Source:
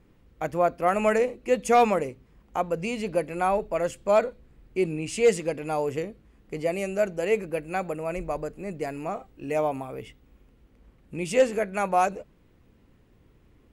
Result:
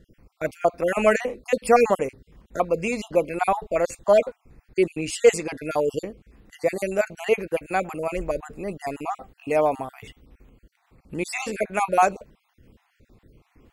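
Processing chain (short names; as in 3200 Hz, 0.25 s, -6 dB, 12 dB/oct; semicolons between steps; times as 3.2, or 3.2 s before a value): random spectral dropouts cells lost 37%; dynamic EQ 150 Hz, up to -5 dB, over -46 dBFS, Q 1.1; gain +5.5 dB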